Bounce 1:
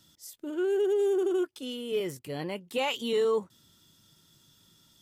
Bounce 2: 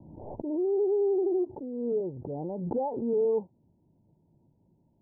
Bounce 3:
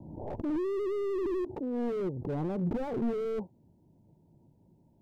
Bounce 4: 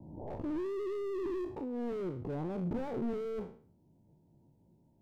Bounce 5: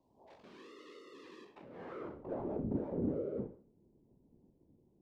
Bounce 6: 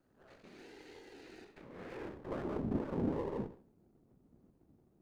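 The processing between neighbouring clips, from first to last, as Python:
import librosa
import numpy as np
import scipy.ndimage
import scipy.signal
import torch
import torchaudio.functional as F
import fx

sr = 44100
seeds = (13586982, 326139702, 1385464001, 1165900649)

y1 = scipy.signal.sosfilt(scipy.signal.butter(16, 920.0, 'lowpass', fs=sr, output='sos'), x)
y1 = fx.pre_swell(y1, sr, db_per_s=42.0)
y2 = fx.slew_limit(y1, sr, full_power_hz=7.8)
y2 = y2 * 10.0 ** (3.5 / 20.0)
y3 = fx.spec_trails(y2, sr, decay_s=0.46)
y3 = y3 * 10.0 ** (-5.0 / 20.0)
y4 = fx.filter_sweep_bandpass(y3, sr, from_hz=4100.0, to_hz=280.0, start_s=1.37, end_s=2.76, q=1.1)
y4 = fx.whisperise(y4, sr, seeds[0])
y4 = y4 * 10.0 ** (2.0 / 20.0)
y5 = fx.lower_of_two(y4, sr, delay_ms=0.45)
y5 = y5 * 10.0 ** (1.0 / 20.0)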